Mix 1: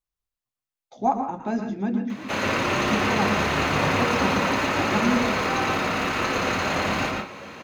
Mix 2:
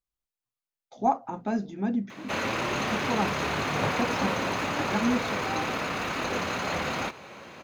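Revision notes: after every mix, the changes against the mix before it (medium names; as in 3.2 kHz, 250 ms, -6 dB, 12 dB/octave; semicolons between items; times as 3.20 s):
reverb: off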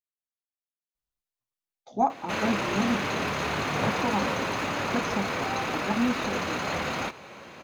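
speech: entry +0.95 s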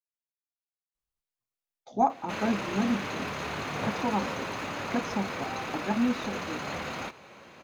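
background -5.5 dB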